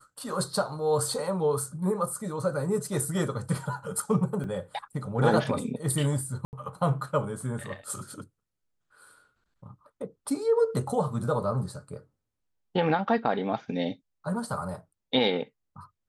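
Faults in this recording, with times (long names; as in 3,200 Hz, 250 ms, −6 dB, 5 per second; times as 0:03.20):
0:04.44: drop-out 2.3 ms
0:06.45–0:06.53: drop-out 79 ms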